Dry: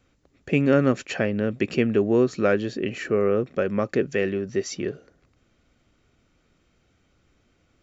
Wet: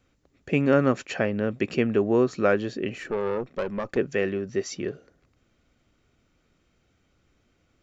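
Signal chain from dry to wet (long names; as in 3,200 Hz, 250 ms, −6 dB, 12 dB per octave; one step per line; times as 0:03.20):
dynamic equaliser 950 Hz, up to +6 dB, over −36 dBFS, Q 1.2
0:02.96–0:03.97: tube saturation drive 18 dB, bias 0.6
level −2.5 dB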